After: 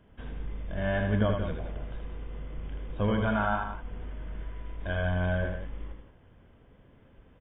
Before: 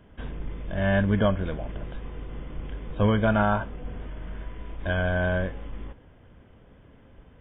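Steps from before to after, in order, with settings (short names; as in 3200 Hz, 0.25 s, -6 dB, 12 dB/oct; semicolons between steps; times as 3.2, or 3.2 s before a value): 3.23–3.91 graphic EQ 125/500/1000 Hz -6/-7/+4 dB; on a send: loudspeakers at several distances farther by 27 m -5 dB, 61 m -9 dB; on the sum: gain -6 dB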